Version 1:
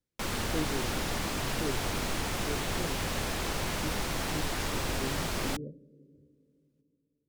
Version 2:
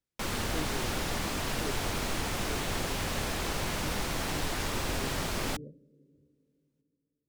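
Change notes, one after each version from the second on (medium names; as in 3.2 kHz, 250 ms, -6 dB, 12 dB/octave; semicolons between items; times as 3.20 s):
speech -5.0 dB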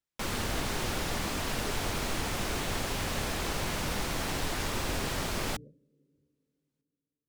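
speech -7.5 dB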